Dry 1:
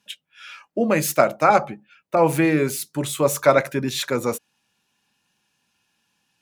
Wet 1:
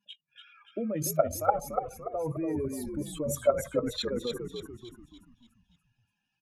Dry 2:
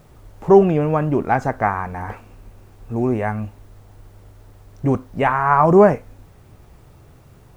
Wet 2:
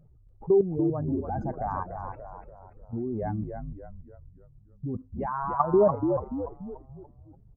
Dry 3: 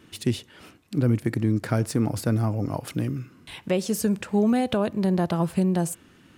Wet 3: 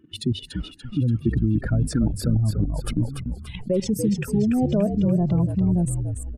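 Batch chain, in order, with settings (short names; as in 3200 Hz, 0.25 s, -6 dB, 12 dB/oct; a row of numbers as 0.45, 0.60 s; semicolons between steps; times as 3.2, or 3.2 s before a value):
spectral contrast raised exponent 2.2; level quantiser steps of 13 dB; frequency-shifting echo 0.289 s, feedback 46%, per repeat -61 Hz, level -6 dB; normalise peaks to -9 dBFS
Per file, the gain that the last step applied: -5.0, -5.0, +6.0 dB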